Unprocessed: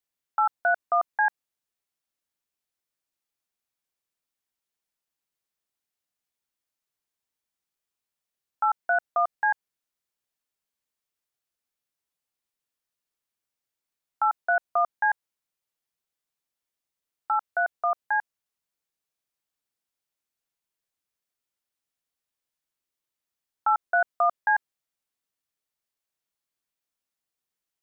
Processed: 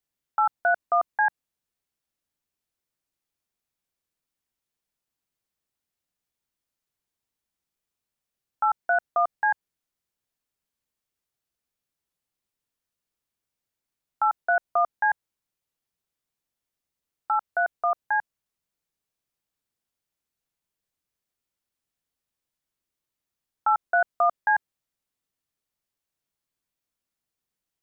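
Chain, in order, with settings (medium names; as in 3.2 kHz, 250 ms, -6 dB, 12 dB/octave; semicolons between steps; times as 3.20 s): bass shelf 320 Hz +8 dB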